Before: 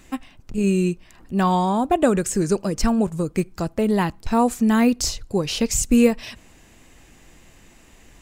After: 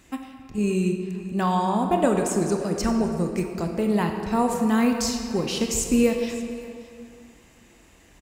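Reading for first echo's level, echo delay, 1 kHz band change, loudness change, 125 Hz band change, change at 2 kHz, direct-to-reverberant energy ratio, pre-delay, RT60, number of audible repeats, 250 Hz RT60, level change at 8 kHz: -18.5 dB, 577 ms, -2.5 dB, -3.0 dB, -3.0 dB, -2.5 dB, 3.5 dB, 21 ms, 2.4 s, 1, 2.2 s, -3.0 dB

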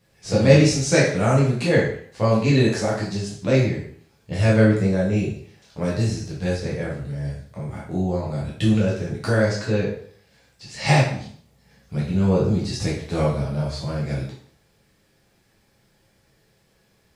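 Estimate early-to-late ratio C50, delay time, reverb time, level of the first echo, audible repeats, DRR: 3.5 dB, no echo, 0.55 s, no echo, no echo, -5.5 dB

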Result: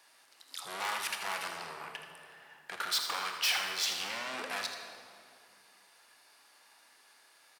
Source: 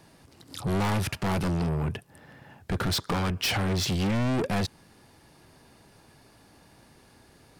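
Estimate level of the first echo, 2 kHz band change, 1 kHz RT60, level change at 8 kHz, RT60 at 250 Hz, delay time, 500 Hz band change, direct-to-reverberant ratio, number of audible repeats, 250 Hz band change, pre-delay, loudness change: -10.0 dB, -1.0 dB, 2.1 s, -0.5 dB, 2.9 s, 81 ms, -13.5 dB, 3.0 dB, 1, -26.5 dB, 21 ms, -6.0 dB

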